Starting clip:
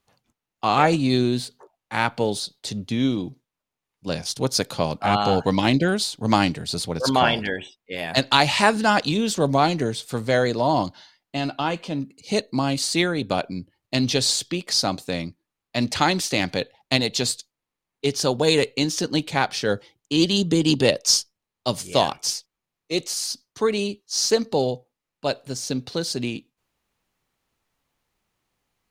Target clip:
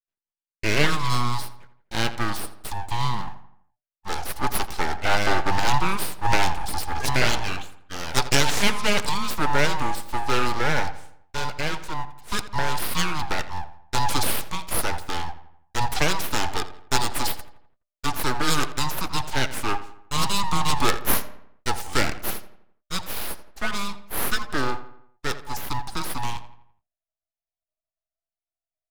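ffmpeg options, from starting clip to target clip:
ffmpeg -i in.wav -filter_complex "[0:a]agate=range=-33dB:threshold=-44dB:ratio=3:detection=peak,asubboost=boost=10.5:cutoff=85,afreqshift=300,aeval=exprs='abs(val(0))':channel_layout=same,asplit=2[link_01][link_02];[link_02]adelay=84,lowpass=frequency=3000:poles=1,volume=-13.5dB,asplit=2[link_03][link_04];[link_04]adelay=84,lowpass=frequency=3000:poles=1,volume=0.48,asplit=2[link_05][link_06];[link_06]adelay=84,lowpass=frequency=3000:poles=1,volume=0.48,asplit=2[link_07][link_08];[link_08]adelay=84,lowpass=frequency=3000:poles=1,volume=0.48,asplit=2[link_09][link_10];[link_10]adelay=84,lowpass=frequency=3000:poles=1,volume=0.48[link_11];[link_03][link_05][link_07][link_09][link_11]amix=inputs=5:normalize=0[link_12];[link_01][link_12]amix=inputs=2:normalize=0" out.wav

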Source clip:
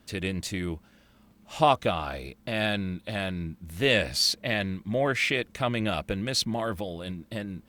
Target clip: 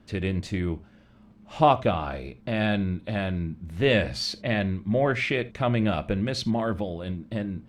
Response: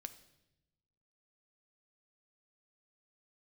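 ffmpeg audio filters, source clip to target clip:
-filter_complex "[0:a]aemphasis=mode=reproduction:type=75fm,asplit=2[link_01][link_02];[1:a]atrim=start_sample=2205,atrim=end_sample=3969,lowshelf=frequency=380:gain=4.5[link_03];[link_02][link_03]afir=irnorm=-1:irlink=0,volume=11.5dB[link_04];[link_01][link_04]amix=inputs=2:normalize=0,volume=-9dB"

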